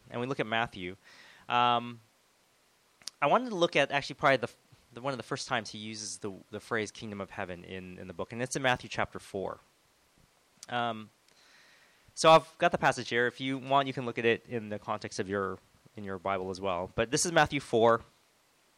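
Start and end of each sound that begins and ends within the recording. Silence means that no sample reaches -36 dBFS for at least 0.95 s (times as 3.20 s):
3.08–9.53 s
10.63–11.02 s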